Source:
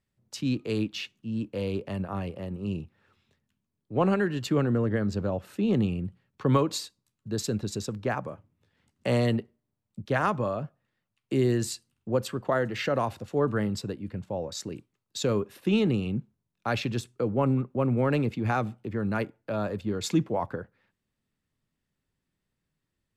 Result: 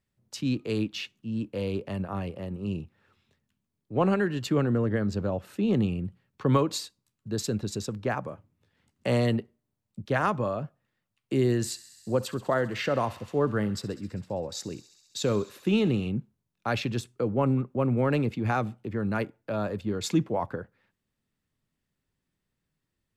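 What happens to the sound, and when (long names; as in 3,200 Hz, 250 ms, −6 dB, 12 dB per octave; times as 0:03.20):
0:11.44–0:16.09: feedback echo with a high-pass in the loop 66 ms, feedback 82%, high-pass 850 Hz, level −17 dB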